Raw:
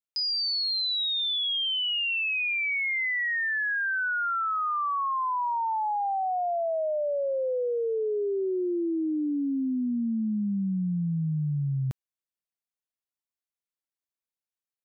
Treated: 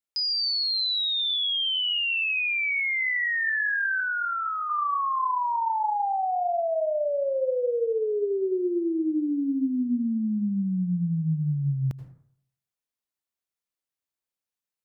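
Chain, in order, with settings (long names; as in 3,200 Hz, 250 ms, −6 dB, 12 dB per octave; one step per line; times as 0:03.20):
0:04.00–0:04.70: Chebyshev high-pass filter 1,600 Hz, order 2
convolution reverb RT60 0.65 s, pre-delay 73 ms, DRR 10 dB
level +1.5 dB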